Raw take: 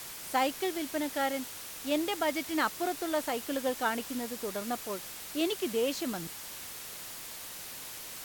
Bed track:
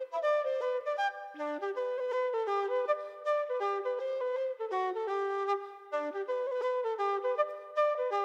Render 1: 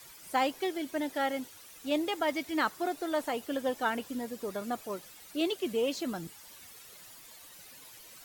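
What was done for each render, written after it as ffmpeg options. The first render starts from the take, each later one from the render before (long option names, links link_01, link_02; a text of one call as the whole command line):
ffmpeg -i in.wav -af "afftdn=noise_reduction=12:noise_floor=-44" out.wav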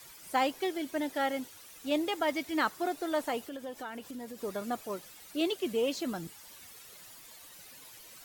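ffmpeg -i in.wav -filter_complex "[0:a]asettb=1/sr,asplit=3[link_01][link_02][link_03];[link_01]atrim=end=3.464[link_04];[link_02]atrim=start=3.46:end=4.43,asetpts=PTS-STARTPTS,afade=type=in:duration=0.004:curve=qsin,afade=type=out:start_time=0.966:duration=0.004:curve=qsin,acompressor=threshold=-40dB:ratio=3:attack=3.2:release=140:knee=1:detection=peak[link_05];[link_03]atrim=start=4.426[link_06];[link_04][link_05]acrossfade=duration=0.004:curve1=hsin:curve2=qsin[link_07];[link_07][link_06]acrossfade=duration=0.004:curve1=qsin:curve2=hsin" out.wav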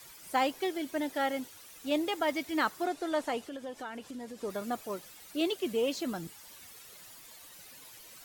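ffmpeg -i in.wav -filter_complex "[0:a]asettb=1/sr,asplit=3[link_01][link_02][link_03];[link_01]atrim=end=2.854[link_04];[link_02]atrim=start=2.85:end=4.5,asetpts=PTS-STARTPTS,afade=type=in:duration=0.004:curve=qsin,afade=type=out:start_time=1.646:duration=0.004:curve=qsin,lowpass=9600[link_05];[link_03]atrim=start=4.496[link_06];[link_04][link_05]acrossfade=duration=0.004:curve1=hsin:curve2=qsin[link_07];[link_07][link_06]acrossfade=duration=0.004:curve1=qsin:curve2=hsin" out.wav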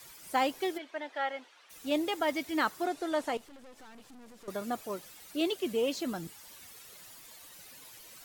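ffmpeg -i in.wav -filter_complex "[0:a]asplit=3[link_01][link_02][link_03];[link_01]afade=type=out:start_time=0.77:duration=0.02[link_04];[link_02]highpass=640,lowpass=3100,afade=type=in:start_time=0.77:duration=0.02,afade=type=out:start_time=1.69:duration=0.02[link_05];[link_03]afade=type=in:start_time=1.69:duration=0.02[link_06];[link_04][link_05][link_06]amix=inputs=3:normalize=0,asettb=1/sr,asplit=3[link_07][link_08][link_09];[link_07]atrim=end=3.374[link_10];[link_08]atrim=start=3.37:end=4.48,asetpts=PTS-STARTPTS,afade=type=in:duration=0.004:curve=qsin,afade=type=out:start_time=1.106:duration=0.004:curve=qsin,aeval=exprs='(tanh(355*val(0)+0.8)-tanh(0.8))/355':channel_layout=same[link_11];[link_09]atrim=start=4.476[link_12];[link_10][link_11]acrossfade=duration=0.004:curve1=hsin:curve2=qsin[link_13];[link_13][link_12]acrossfade=duration=0.004:curve1=qsin:curve2=hsin" out.wav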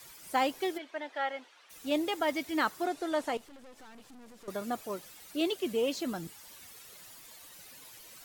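ffmpeg -i in.wav -af anull out.wav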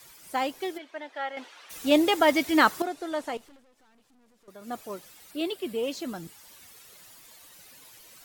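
ffmpeg -i in.wav -filter_complex "[0:a]asettb=1/sr,asplit=3[link_01][link_02][link_03];[link_01]atrim=end=5.314[link_04];[link_02]atrim=start=5.31:end=5.83,asetpts=PTS-STARTPTS,afade=type=in:duration=0.004:curve=qsin,afade=type=out:start_time=0.516:duration=0.004:curve=qsin,equalizer=frequency=6300:width_type=o:width=0.22:gain=-11.5[link_05];[link_03]atrim=start=5.826[link_06];[link_04][link_05]acrossfade=duration=0.004:curve1=hsin:curve2=qsin[link_07];[link_07][link_06]acrossfade=duration=0.004:curve1=qsin:curve2=hsin,asplit=5[link_08][link_09][link_10][link_11][link_12];[link_08]atrim=end=1.372[link_13];[link_09]atrim=start=1.368:end=2.822,asetpts=PTS-STARTPTS,volume=9.5dB[link_14];[link_10]atrim=start=2.818:end=3.65,asetpts=PTS-STARTPTS,afade=type=out:start_time=0.672:duration=0.16:silence=0.298538[link_15];[link_11]atrim=start=3.65:end=4.59,asetpts=PTS-STARTPTS,volume=-10.5dB[link_16];[link_12]atrim=start=4.59,asetpts=PTS-STARTPTS,afade=type=in:duration=0.16:silence=0.298538[link_17];[link_13][link_14]acrossfade=duration=0.004:curve1=hsin:curve2=hsin[link_18];[link_15][link_16][link_17]concat=n=3:v=0:a=1[link_19];[link_18][link_19]acrossfade=duration=0.004:curve1=hsin:curve2=hsin" out.wav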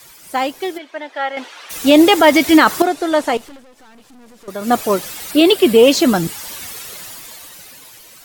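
ffmpeg -i in.wav -af "dynaudnorm=framelen=270:gausssize=11:maxgain=13dB,alimiter=level_in=9dB:limit=-1dB:release=50:level=0:latency=1" out.wav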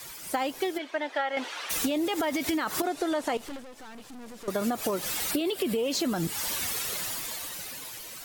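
ffmpeg -i in.wav -af "alimiter=limit=-12.5dB:level=0:latency=1:release=116,acompressor=threshold=-25dB:ratio=10" out.wav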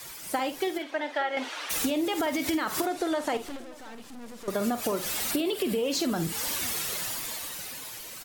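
ffmpeg -i in.wav -filter_complex "[0:a]asplit=2[link_01][link_02];[link_02]adelay=50,volume=-11dB[link_03];[link_01][link_03]amix=inputs=2:normalize=0,asplit=2[link_04][link_05];[link_05]adelay=583.1,volume=-22dB,highshelf=frequency=4000:gain=-13.1[link_06];[link_04][link_06]amix=inputs=2:normalize=0" out.wav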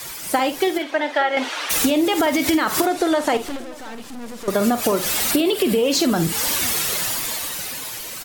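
ffmpeg -i in.wav -af "volume=9.5dB" out.wav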